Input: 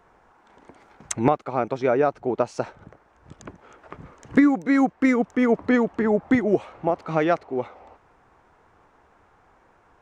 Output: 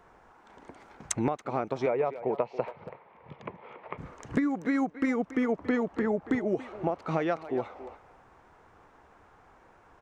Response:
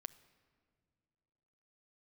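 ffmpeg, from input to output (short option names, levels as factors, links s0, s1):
-filter_complex "[0:a]asettb=1/sr,asplit=3[s0][s1][s2];[s0]atrim=end=1.864[s3];[s1]atrim=start=1.86:end=3.98,asetpts=PTS-STARTPTS,afade=t=in:d=0.004:c=qsin,afade=t=out:st=2.116:d=0.004:c=qsin,highpass=140,equalizer=f=140:t=q:w=4:g=4,equalizer=f=290:t=q:w=4:g=-9,equalizer=f=490:t=q:w=4:g=6,equalizer=f=970:t=q:w=4:g=7,equalizer=f=1500:t=q:w=4:g=-8,equalizer=f=2200:t=q:w=4:g=8,lowpass=f=3500:w=0.5412,lowpass=f=3500:w=1.3066[s4];[s2]atrim=start=3.976[s5];[s3][s4]acrossfade=d=0.004:c1=hsin:c2=qsin[s6];[s6][s5]acrossfade=d=0.004:c1=qsin:c2=hsin,acompressor=threshold=0.0501:ratio=4,asplit=2[s7][s8];[s8]adelay=280,highpass=300,lowpass=3400,asoftclip=type=hard:threshold=0.0944,volume=0.224[s9];[s7][s9]amix=inputs=2:normalize=0"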